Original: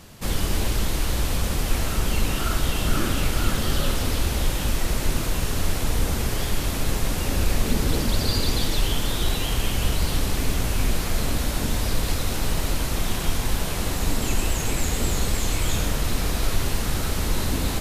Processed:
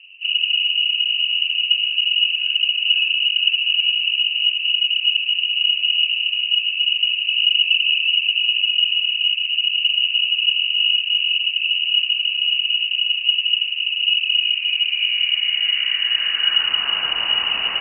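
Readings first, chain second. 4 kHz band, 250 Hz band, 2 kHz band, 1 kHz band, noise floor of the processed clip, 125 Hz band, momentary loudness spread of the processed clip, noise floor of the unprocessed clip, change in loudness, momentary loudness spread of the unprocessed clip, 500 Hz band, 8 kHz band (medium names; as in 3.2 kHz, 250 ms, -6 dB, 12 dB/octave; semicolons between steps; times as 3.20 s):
+18.0 dB, under -25 dB, +11.5 dB, no reading, -26 dBFS, under -35 dB, 2 LU, -27 dBFS, +9.5 dB, 2 LU, under -15 dB, under -40 dB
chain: low-pass sweep 280 Hz -> 1.9 kHz, 14.09–17.01 s; frequency inversion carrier 2.9 kHz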